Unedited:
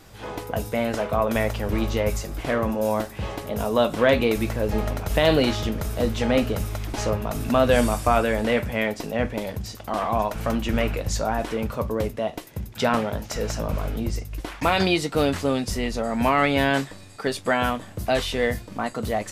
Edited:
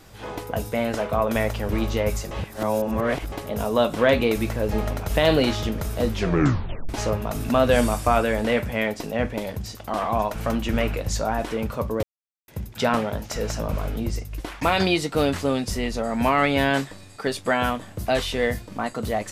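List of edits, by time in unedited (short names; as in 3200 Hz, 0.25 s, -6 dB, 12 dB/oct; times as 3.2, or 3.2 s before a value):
2.31–3.32 reverse
6.1 tape stop 0.79 s
12.03–12.48 mute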